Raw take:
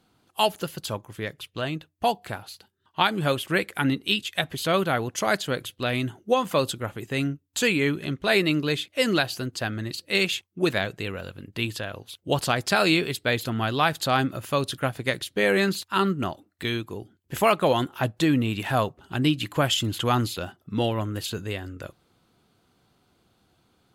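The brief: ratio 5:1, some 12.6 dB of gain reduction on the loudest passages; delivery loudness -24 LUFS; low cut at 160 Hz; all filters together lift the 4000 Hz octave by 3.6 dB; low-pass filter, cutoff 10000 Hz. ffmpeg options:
-af "highpass=160,lowpass=10k,equalizer=f=4k:t=o:g=4.5,acompressor=threshold=-30dB:ratio=5,volume=10.5dB"

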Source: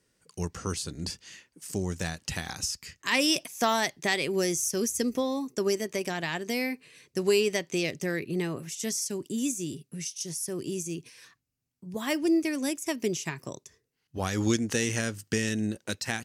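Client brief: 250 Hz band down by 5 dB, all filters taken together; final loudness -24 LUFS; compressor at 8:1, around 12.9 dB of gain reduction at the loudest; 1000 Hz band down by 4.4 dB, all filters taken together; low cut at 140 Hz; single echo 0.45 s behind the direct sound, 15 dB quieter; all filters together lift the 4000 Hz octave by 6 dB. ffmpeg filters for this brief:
-af "highpass=140,equalizer=f=250:t=o:g=-6,equalizer=f=1k:t=o:g=-6,equalizer=f=4k:t=o:g=8.5,acompressor=threshold=-31dB:ratio=8,aecho=1:1:450:0.178,volume=11.5dB"

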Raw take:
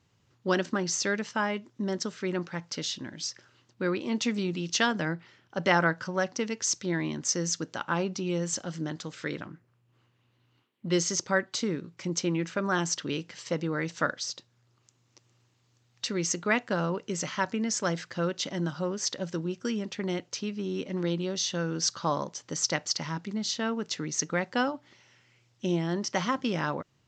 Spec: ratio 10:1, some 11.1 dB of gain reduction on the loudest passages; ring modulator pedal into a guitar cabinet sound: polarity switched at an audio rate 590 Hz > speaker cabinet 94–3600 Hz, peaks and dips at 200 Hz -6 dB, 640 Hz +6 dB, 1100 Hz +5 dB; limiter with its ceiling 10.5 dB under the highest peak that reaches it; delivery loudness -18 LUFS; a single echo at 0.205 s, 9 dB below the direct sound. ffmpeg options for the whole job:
-af "acompressor=threshold=-31dB:ratio=10,alimiter=level_in=5.5dB:limit=-24dB:level=0:latency=1,volume=-5.5dB,aecho=1:1:205:0.355,aeval=exprs='val(0)*sgn(sin(2*PI*590*n/s))':c=same,highpass=94,equalizer=f=200:t=q:w=4:g=-6,equalizer=f=640:t=q:w=4:g=6,equalizer=f=1.1k:t=q:w=4:g=5,lowpass=f=3.6k:w=0.5412,lowpass=f=3.6k:w=1.3066,volume=20.5dB"

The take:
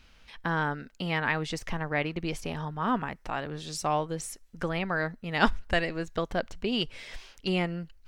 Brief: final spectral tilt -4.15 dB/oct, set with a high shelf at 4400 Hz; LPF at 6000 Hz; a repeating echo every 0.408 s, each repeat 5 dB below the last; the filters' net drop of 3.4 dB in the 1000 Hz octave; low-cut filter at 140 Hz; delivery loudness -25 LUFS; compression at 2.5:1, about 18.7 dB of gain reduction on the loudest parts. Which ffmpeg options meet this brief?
-af "highpass=140,lowpass=6k,equalizer=f=1k:t=o:g=-4,highshelf=f=4.4k:g=-9,acompressor=threshold=-49dB:ratio=2.5,aecho=1:1:408|816|1224|1632|2040|2448|2856:0.562|0.315|0.176|0.0988|0.0553|0.031|0.0173,volume=20.5dB"

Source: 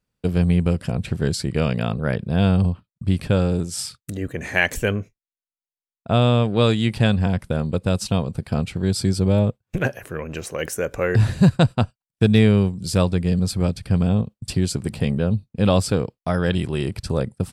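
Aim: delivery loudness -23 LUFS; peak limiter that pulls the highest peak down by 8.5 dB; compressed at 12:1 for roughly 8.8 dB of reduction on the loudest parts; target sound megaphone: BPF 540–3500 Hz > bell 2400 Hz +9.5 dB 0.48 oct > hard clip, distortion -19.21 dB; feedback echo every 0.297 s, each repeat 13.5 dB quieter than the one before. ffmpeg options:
-af "acompressor=threshold=-18dB:ratio=12,alimiter=limit=-15dB:level=0:latency=1,highpass=540,lowpass=3.5k,equalizer=f=2.4k:t=o:w=0.48:g=9.5,aecho=1:1:297|594:0.211|0.0444,asoftclip=type=hard:threshold=-19dB,volume=10.5dB"

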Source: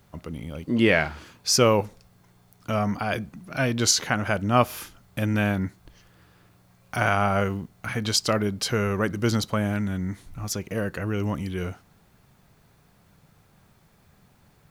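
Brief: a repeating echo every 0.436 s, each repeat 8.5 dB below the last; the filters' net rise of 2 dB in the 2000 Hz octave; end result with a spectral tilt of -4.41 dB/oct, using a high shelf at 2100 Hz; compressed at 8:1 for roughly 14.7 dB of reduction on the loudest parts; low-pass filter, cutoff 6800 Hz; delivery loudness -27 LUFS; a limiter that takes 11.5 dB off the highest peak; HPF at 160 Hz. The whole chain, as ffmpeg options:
-af "highpass=160,lowpass=6.8k,equalizer=f=2k:t=o:g=6,highshelf=f=2.1k:g=-6,acompressor=threshold=-29dB:ratio=8,alimiter=limit=-24dB:level=0:latency=1,aecho=1:1:436|872|1308|1744:0.376|0.143|0.0543|0.0206,volume=9.5dB"

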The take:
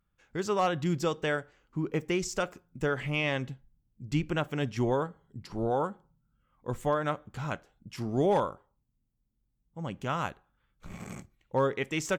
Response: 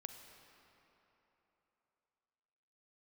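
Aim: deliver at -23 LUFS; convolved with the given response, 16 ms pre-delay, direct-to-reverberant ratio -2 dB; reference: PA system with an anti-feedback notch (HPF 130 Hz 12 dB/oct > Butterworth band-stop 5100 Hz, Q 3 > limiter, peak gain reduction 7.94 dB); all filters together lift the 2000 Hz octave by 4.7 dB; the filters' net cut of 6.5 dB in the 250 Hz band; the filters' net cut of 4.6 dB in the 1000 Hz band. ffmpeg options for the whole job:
-filter_complex "[0:a]equalizer=f=250:t=o:g=-9,equalizer=f=1k:t=o:g=-8.5,equalizer=f=2k:t=o:g=9,asplit=2[a][b];[1:a]atrim=start_sample=2205,adelay=16[c];[b][c]afir=irnorm=-1:irlink=0,volume=6dB[d];[a][d]amix=inputs=2:normalize=0,highpass=130,asuperstop=centerf=5100:order=8:qfactor=3,volume=9dB,alimiter=limit=-9.5dB:level=0:latency=1"

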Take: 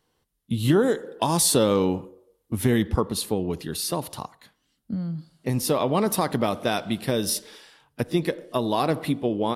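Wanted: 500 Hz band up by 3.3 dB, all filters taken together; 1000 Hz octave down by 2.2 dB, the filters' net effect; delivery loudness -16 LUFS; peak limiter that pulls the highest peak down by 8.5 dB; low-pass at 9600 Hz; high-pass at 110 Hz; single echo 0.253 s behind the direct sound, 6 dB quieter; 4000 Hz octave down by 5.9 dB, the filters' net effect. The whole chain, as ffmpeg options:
-af "highpass=110,lowpass=9.6k,equalizer=f=500:t=o:g=5,equalizer=f=1k:t=o:g=-4.5,equalizer=f=4k:t=o:g=-7,alimiter=limit=-15dB:level=0:latency=1,aecho=1:1:253:0.501,volume=10.5dB"

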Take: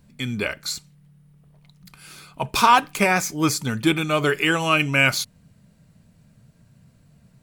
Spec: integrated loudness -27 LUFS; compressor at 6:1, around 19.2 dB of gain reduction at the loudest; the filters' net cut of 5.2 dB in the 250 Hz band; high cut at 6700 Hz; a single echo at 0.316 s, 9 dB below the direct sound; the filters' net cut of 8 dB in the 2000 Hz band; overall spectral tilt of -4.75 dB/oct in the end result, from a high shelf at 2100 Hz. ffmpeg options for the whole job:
-af "lowpass=6.7k,equalizer=f=250:t=o:g=-7.5,equalizer=f=2k:t=o:g=-6,highshelf=f=2.1k:g=-7.5,acompressor=threshold=-35dB:ratio=6,aecho=1:1:316:0.355,volume=11.5dB"

